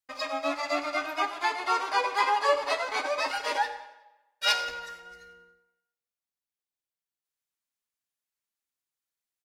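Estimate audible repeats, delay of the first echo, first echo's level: 3, 90 ms, -18.5 dB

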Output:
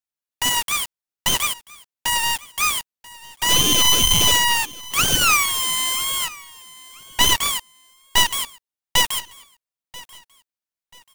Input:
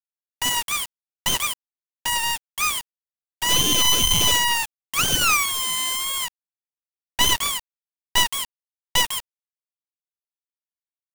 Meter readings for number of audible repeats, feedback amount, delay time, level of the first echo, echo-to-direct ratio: 2, 31%, 0.986 s, -21.0 dB, -20.5 dB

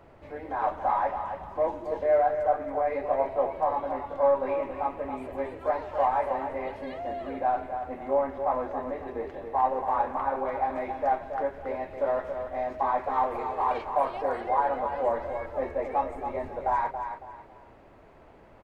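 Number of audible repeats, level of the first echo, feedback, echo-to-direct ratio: 3, -8.0 dB, 29%, -7.5 dB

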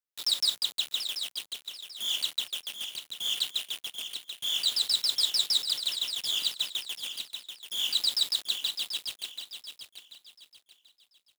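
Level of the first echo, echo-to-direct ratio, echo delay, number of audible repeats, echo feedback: -9.0 dB, -8.5 dB, 0.736 s, 3, 31%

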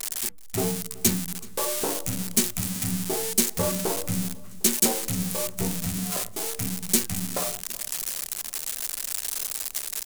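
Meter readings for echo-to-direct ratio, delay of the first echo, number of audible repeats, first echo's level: -20.5 dB, 0.377 s, 3, -22.0 dB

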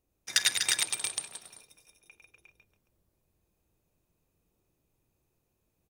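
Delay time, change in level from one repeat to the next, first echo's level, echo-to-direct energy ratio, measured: 50 ms, no steady repeat, -17.5 dB, 0.5 dB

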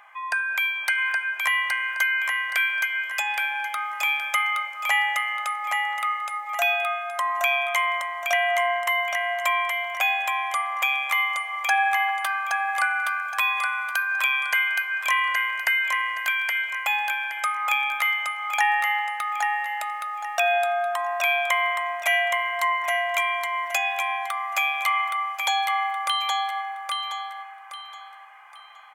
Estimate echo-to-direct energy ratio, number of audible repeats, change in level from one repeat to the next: -3.5 dB, 3, -10.5 dB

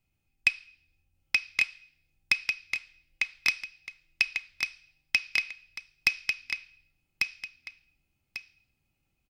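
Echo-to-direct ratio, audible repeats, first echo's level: -3.5 dB, 2, -4.0 dB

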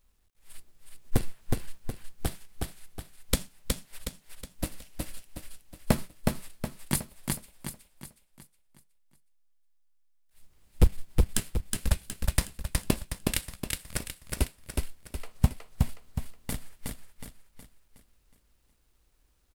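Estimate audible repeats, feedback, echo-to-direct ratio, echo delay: 5, 43%, -2.0 dB, 0.367 s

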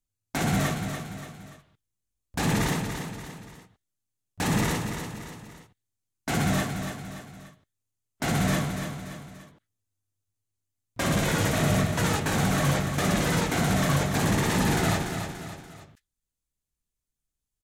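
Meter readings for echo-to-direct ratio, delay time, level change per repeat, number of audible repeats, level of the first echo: -6.5 dB, 0.289 s, -6.5 dB, 3, -7.5 dB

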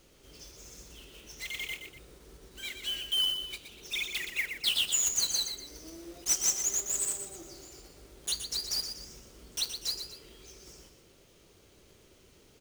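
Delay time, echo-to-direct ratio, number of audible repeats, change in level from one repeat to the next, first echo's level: 0.121 s, -7.5 dB, 2, -8.0 dB, -8.0 dB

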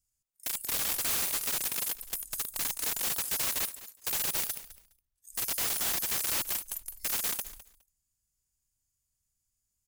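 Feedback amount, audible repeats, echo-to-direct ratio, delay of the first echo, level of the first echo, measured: 16%, 2, -16.5 dB, 0.207 s, -16.5 dB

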